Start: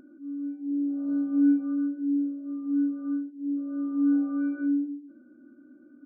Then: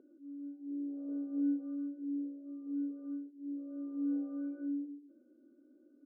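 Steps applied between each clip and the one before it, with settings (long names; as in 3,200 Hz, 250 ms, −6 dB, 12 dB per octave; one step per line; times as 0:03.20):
resonant band-pass 460 Hz, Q 3.5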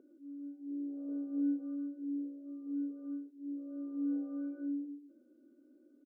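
single-tap delay 104 ms −23 dB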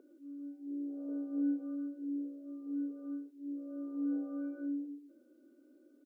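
parametric band 120 Hz −14 dB 2 octaves
level +5.5 dB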